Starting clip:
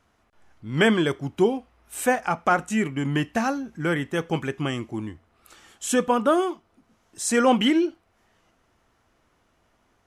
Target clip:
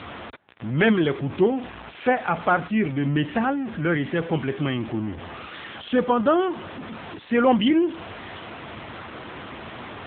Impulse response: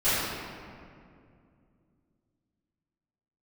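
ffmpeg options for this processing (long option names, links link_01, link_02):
-af "aeval=exprs='val(0)+0.5*0.0398*sgn(val(0))':channel_layout=same,aeval=exprs='0.422*(cos(1*acos(clip(val(0)/0.422,-1,1)))-cos(1*PI/2))+0.0376*(cos(2*acos(clip(val(0)/0.422,-1,1)))-cos(2*PI/2))+0.0335*(cos(4*acos(clip(val(0)/0.422,-1,1)))-cos(4*PI/2))':channel_layout=same" -ar 8000 -c:a libopencore_amrnb -b:a 7950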